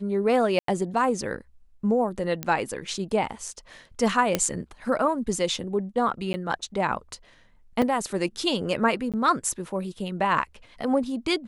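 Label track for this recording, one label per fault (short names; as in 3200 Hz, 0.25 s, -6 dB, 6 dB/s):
0.590000	0.680000	gap 93 ms
2.430000	2.430000	pop -13 dBFS
4.350000	4.350000	pop -7 dBFS
6.330000	6.340000	gap 10 ms
7.820000	7.820000	gap 3.3 ms
9.120000	9.140000	gap 17 ms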